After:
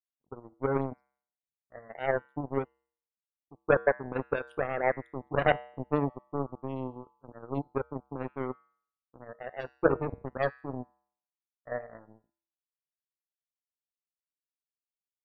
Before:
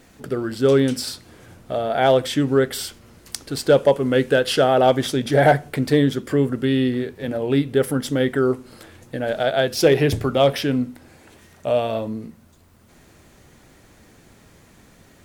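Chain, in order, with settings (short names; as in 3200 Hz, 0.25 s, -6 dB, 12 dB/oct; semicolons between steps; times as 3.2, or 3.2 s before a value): Wiener smoothing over 25 samples; low-pass opened by the level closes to 390 Hz, open at -14.5 dBFS; in parallel at +0.5 dB: limiter -15 dBFS, peak gain reduction 9.5 dB; on the sum: loudest bins only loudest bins 16; power-law curve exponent 3; resonator 67 Hz, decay 0.6 s, harmonics odd, mix 50%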